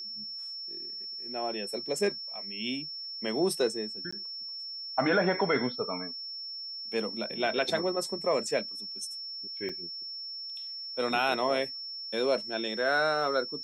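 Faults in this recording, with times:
whine 5.4 kHz -37 dBFS
4.11–4.12 s: dropout 15 ms
9.69 s: dropout 4.8 ms

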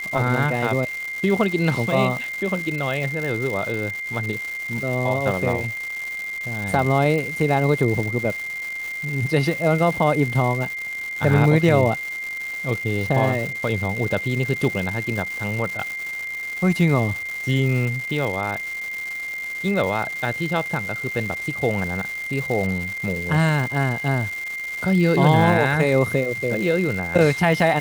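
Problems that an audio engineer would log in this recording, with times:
crackle 380 per s -27 dBFS
whine 2.1 kHz -27 dBFS

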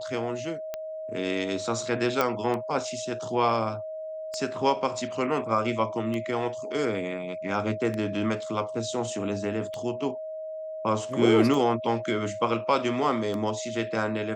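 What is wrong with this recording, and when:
tick 33 1/3 rpm -19 dBFS
whine 630 Hz -33 dBFS
2.21 s: pop -10 dBFS

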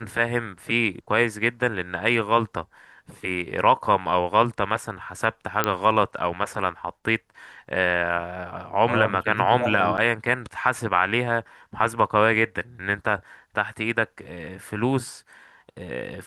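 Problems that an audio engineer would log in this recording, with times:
5.64 s: pop -5 dBFS
9.97–9.98 s: dropout 9.3 ms

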